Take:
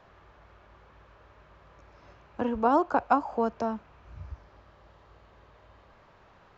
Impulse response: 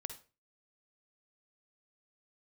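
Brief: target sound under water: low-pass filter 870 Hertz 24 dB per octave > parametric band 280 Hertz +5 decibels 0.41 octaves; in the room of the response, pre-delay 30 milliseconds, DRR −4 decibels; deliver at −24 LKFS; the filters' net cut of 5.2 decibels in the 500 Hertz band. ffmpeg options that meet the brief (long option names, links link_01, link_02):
-filter_complex "[0:a]equalizer=frequency=500:width_type=o:gain=-7,asplit=2[link_01][link_02];[1:a]atrim=start_sample=2205,adelay=30[link_03];[link_02][link_03]afir=irnorm=-1:irlink=0,volume=6.5dB[link_04];[link_01][link_04]amix=inputs=2:normalize=0,lowpass=frequency=870:width=0.5412,lowpass=frequency=870:width=1.3066,equalizer=frequency=280:width_type=o:width=0.41:gain=5,volume=1.5dB"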